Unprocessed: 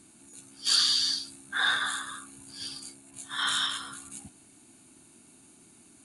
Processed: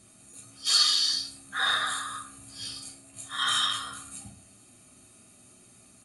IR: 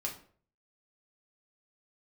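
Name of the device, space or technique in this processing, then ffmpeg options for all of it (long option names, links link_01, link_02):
microphone above a desk: -filter_complex "[0:a]aecho=1:1:1.6:0.54[link_01];[1:a]atrim=start_sample=2205[link_02];[link_01][link_02]afir=irnorm=-1:irlink=0,asettb=1/sr,asplit=3[link_03][link_04][link_05];[link_03]atrim=end=0.684[link_06];[link_04]atrim=start=0.68:end=1.13,asetpts=PTS-STARTPTS,afade=type=in:duration=0.004:curve=qsin,afade=type=out:start_time=0.446:duration=0.004:curve=qsin,highpass=frequency=260:width=0.5412,highpass=frequency=260:width=1.3066[link_07];[link_05]atrim=start=1.126[link_08];[link_06][link_07]acrossfade=duration=0.004:curve1=hsin:curve2=qsin[link_09];[link_09][link_08]acrossfade=duration=0.004:curve1=qsin:curve2=hsin"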